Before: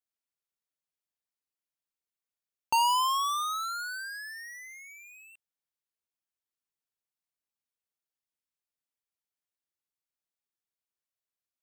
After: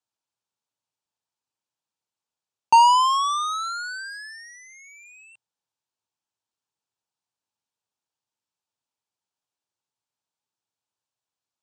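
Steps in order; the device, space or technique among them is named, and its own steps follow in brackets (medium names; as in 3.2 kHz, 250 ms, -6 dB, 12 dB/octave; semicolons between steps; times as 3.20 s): car door speaker with a rattle (rattle on loud lows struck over -49 dBFS, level -34 dBFS; cabinet simulation 95–8400 Hz, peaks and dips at 110 Hz +9 dB, 890 Hz +8 dB, 2 kHz -8 dB); trim +5 dB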